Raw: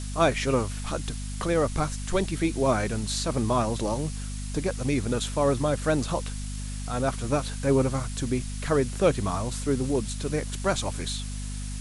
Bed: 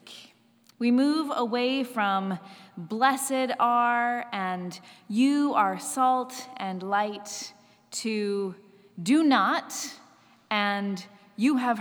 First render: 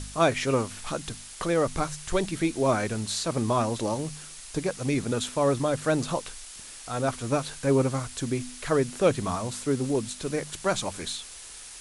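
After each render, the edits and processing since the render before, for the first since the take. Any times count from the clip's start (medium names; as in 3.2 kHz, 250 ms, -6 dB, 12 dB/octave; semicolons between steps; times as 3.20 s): de-hum 50 Hz, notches 5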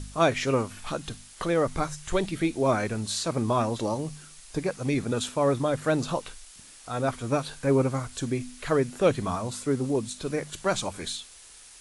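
noise print and reduce 6 dB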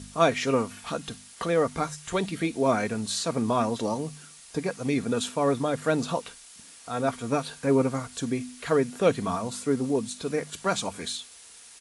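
high-pass 87 Hz 12 dB/octave; comb 4.3 ms, depth 34%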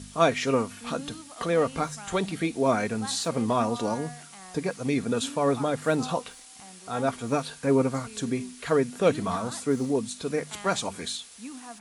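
add bed -18 dB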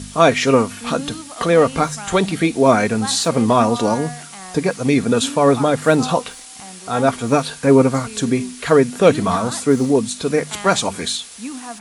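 trim +10.5 dB; peak limiter -1 dBFS, peak gain reduction 3 dB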